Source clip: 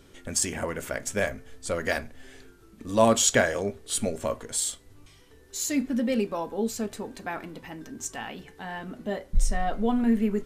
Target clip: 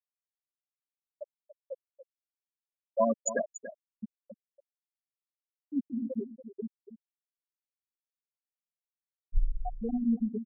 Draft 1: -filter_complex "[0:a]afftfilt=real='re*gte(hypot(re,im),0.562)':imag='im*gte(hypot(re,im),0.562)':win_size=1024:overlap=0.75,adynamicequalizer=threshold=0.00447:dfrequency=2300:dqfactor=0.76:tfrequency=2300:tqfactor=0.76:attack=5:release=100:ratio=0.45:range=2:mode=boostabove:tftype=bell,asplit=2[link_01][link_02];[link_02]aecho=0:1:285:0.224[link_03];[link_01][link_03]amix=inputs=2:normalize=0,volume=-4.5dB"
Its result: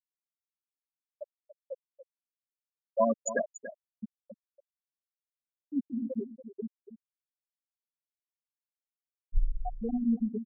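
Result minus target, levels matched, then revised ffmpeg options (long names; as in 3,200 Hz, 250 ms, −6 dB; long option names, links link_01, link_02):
8,000 Hz band −3.0 dB
-filter_complex "[0:a]afftfilt=real='re*gte(hypot(re,im),0.562)':imag='im*gte(hypot(re,im),0.562)':win_size=1024:overlap=0.75,adynamicequalizer=threshold=0.00447:dfrequency=6200:dqfactor=0.76:tfrequency=6200:tqfactor=0.76:attack=5:release=100:ratio=0.45:range=2:mode=boostabove:tftype=bell,asplit=2[link_01][link_02];[link_02]aecho=0:1:285:0.224[link_03];[link_01][link_03]amix=inputs=2:normalize=0,volume=-4.5dB"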